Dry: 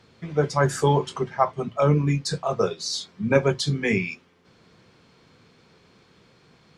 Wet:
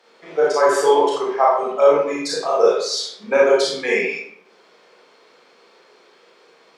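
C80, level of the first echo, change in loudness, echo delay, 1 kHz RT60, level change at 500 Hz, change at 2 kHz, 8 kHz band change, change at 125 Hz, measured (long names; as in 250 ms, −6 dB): 5.5 dB, no echo audible, +6.0 dB, no echo audible, 0.65 s, +9.0 dB, +5.5 dB, +4.0 dB, below −20 dB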